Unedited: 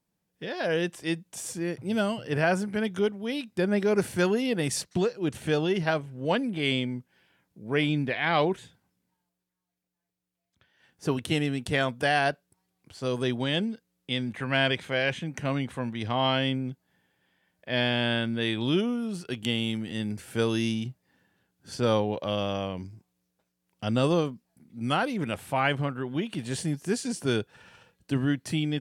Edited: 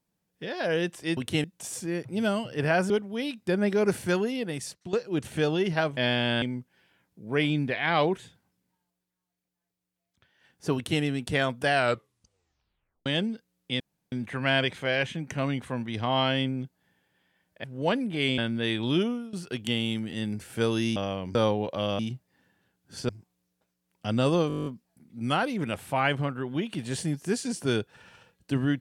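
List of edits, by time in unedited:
0:02.63–0:03.00: remove
0:04.05–0:05.03: fade out, to −14 dB
0:06.07–0:06.81: swap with 0:17.71–0:18.16
0:11.14–0:11.41: duplicate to 0:01.17
0:12.08: tape stop 1.37 s
0:14.19: splice in room tone 0.32 s
0:18.84–0:19.11: fade out, to −16.5 dB
0:20.74–0:21.84: swap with 0:22.48–0:22.87
0:24.26: stutter 0.02 s, 10 plays

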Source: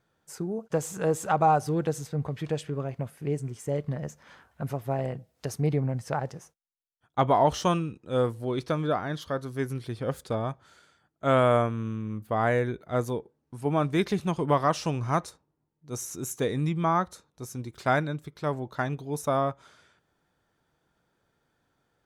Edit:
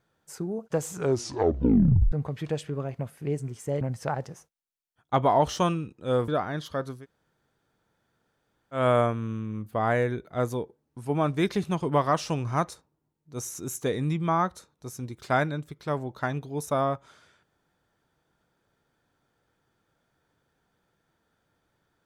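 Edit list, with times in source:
0:00.91: tape stop 1.21 s
0:03.81–0:05.86: remove
0:08.33–0:08.84: remove
0:09.54–0:11.35: fill with room tone, crossfade 0.16 s

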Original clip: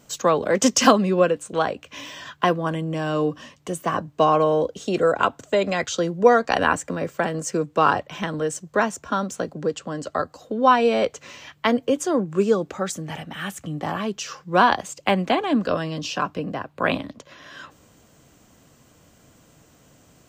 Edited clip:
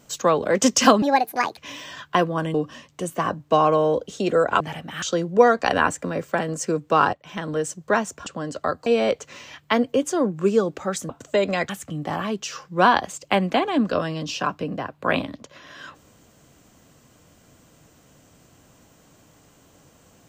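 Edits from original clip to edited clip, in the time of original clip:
0:01.02–0:01.86: play speed 152%
0:02.83–0:03.22: remove
0:05.28–0:05.88: swap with 0:13.03–0:13.45
0:07.99–0:08.39: fade in, from −18 dB
0:09.12–0:09.77: remove
0:10.37–0:10.80: remove

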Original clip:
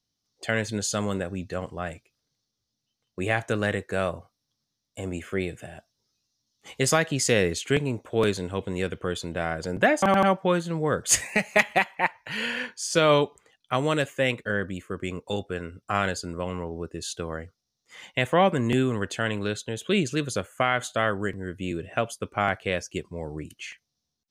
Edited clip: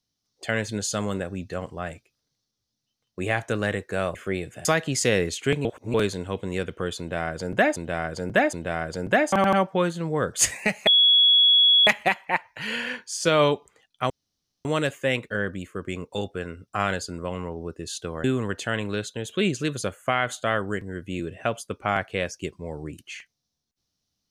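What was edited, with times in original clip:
0:04.15–0:05.21: remove
0:05.71–0:06.89: remove
0:07.89–0:08.18: reverse
0:09.23–0:10.00: repeat, 3 plays
0:11.57: insert tone 3,360 Hz −13.5 dBFS 1.00 s
0:13.80: splice in room tone 0.55 s
0:17.39–0:18.76: remove

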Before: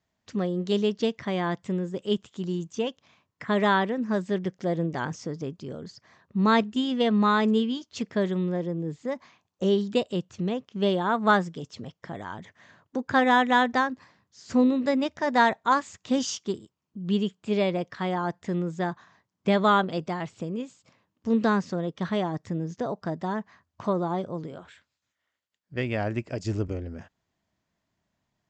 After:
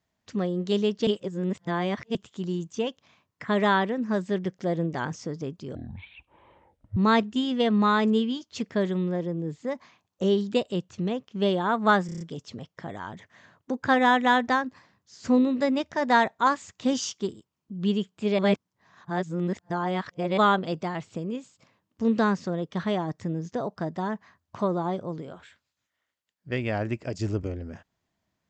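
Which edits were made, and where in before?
0:01.07–0:02.15: reverse
0:05.75–0:06.37: play speed 51%
0:11.46: stutter 0.03 s, 6 plays
0:17.64–0:19.63: reverse

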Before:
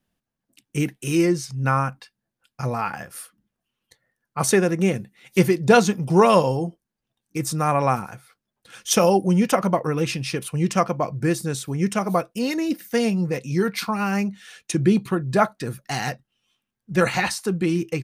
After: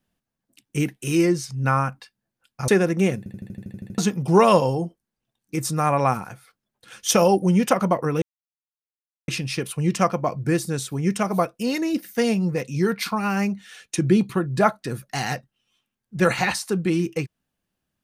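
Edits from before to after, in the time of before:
0:02.68–0:04.50: remove
0:05.00: stutter in place 0.08 s, 10 plays
0:10.04: splice in silence 1.06 s

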